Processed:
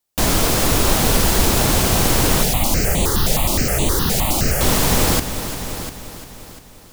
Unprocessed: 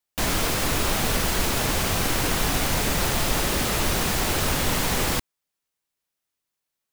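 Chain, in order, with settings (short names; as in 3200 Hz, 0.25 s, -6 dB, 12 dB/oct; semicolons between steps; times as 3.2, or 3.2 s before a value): bell 2000 Hz -5.5 dB 1.8 oct; multi-head echo 0.348 s, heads first and second, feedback 40%, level -13 dB; 2.43–4.61 step phaser 9.6 Hz 300–5200 Hz; gain +8 dB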